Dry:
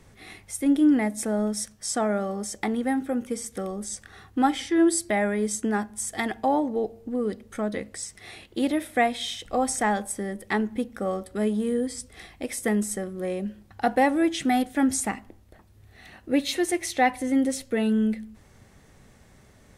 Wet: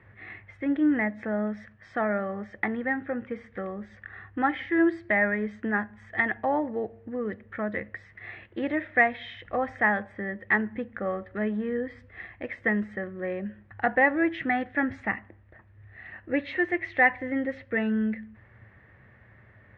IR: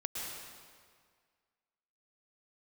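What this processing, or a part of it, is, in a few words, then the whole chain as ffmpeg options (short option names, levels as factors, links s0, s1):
bass cabinet: -af "highpass=72,equalizer=f=110:t=q:w=4:g=8,equalizer=f=160:t=q:w=4:g=-8,equalizer=f=260:t=q:w=4:g=-7,equalizer=f=420:t=q:w=4:g=-5,equalizer=f=790:t=q:w=4:g=-4,equalizer=f=1800:t=q:w=4:g=10,lowpass=f=2400:w=0.5412,lowpass=f=2400:w=1.3066,highshelf=f=8600:g=-5.5"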